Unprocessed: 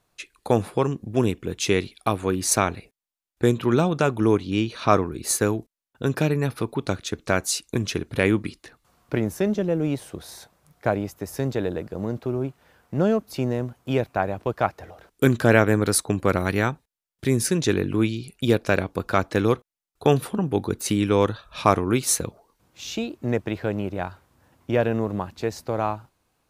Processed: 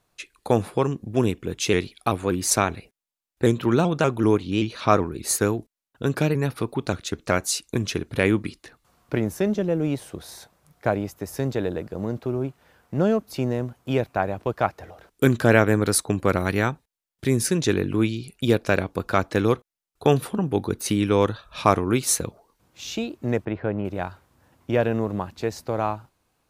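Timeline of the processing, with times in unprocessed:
0:01.54–0:07.39: pitch modulation by a square or saw wave saw up 5.2 Hz, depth 100 cents
0:20.57–0:21.23: notch filter 7,400 Hz
0:23.45–0:23.85: low-pass filter 2,000 Hz

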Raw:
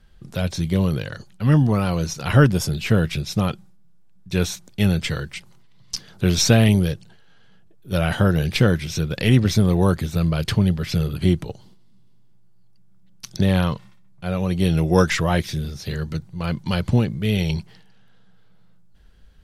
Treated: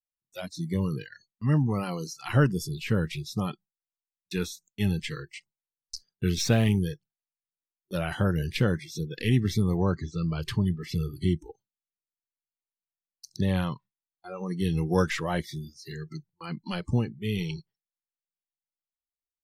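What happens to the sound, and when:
0:01.83–0:04.67: one half of a high-frequency compander encoder only
0:06.38–0:06.80: slack as between gear wheels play −32 dBFS
0:09.77–0:10.41: low-pass filter 6,700 Hz 24 dB per octave
whole clip: noise reduction from a noise print of the clip's start 29 dB; noise gate with hold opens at −36 dBFS; dynamic equaliser 6,300 Hz, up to −3 dB, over −39 dBFS, Q 0.81; level −7.5 dB

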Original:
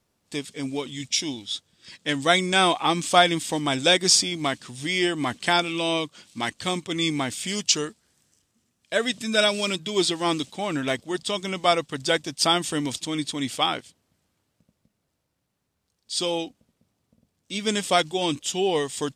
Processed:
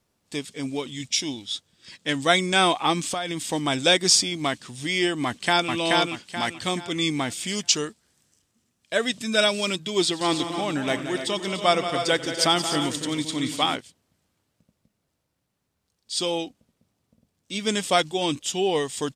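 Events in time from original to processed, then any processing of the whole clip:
0:03.07–0:03.49: downward compressor 8 to 1, threshold −24 dBFS
0:05.25–0:05.72: delay throw 430 ms, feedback 35%, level −1.5 dB
0:10.03–0:13.76: multi-tap delay 94/177/237/289/315 ms −18.5/−10.5/−17/−10.5/−13.5 dB

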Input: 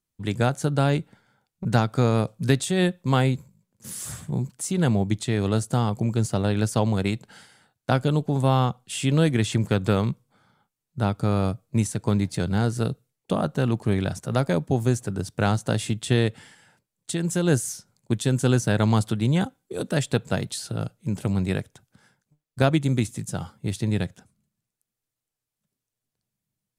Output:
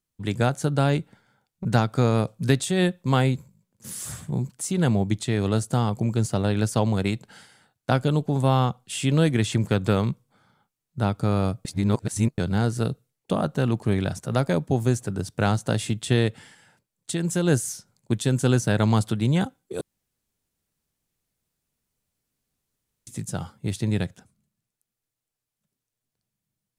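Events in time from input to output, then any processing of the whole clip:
0:11.65–0:12.38: reverse
0:19.81–0:23.07: fill with room tone

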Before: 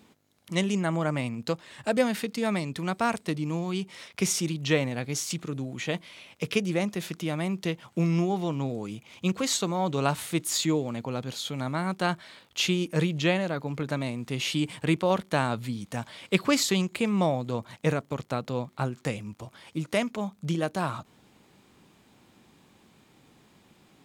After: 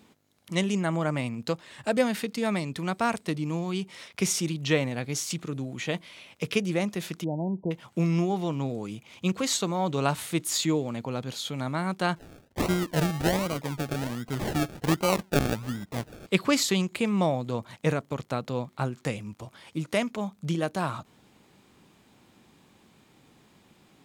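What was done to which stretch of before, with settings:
0:07.24–0:07.71: linear-phase brick-wall low-pass 1,000 Hz
0:12.16–0:16.27: sample-and-hold swept by an LFO 35×, swing 60% 1.3 Hz

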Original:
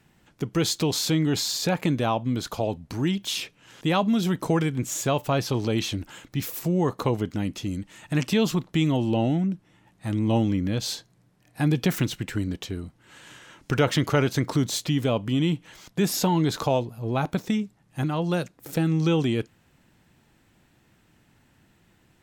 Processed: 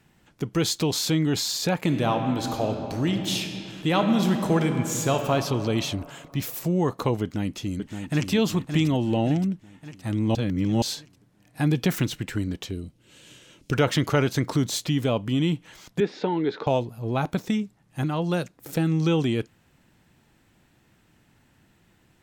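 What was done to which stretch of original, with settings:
0:01.78–0:05.32: thrown reverb, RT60 2.9 s, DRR 4.5 dB
0:07.22–0:08.30: delay throw 570 ms, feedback 55%, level −7 dB
0:10.35–0:10.82: reverse
0:12.71–0:13.73: flat-topped bell 1,200 Hz −10.5 dB
0:16.00–0:16.67: loudspeaker in its box 280–3,300 Hz, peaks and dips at 420 Hz +7 dB, 670 Hz −6 dB, 1,100 Hz −8 dB, 2,900 Hz −7 dB

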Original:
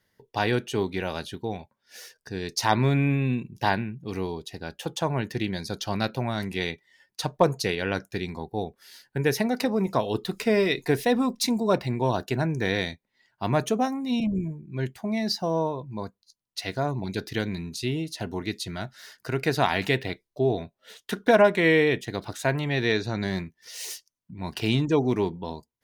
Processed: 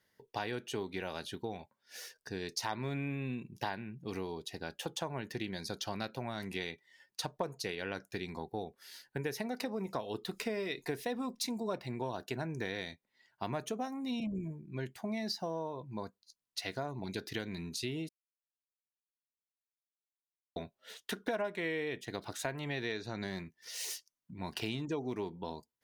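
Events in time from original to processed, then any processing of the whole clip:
0:18.09–0:20.56: silence
whole clip: low-shelf EQ 150 Hz −8 dB; downward compressor 4 to 1, threshold −32 dBFS; level −3 dB

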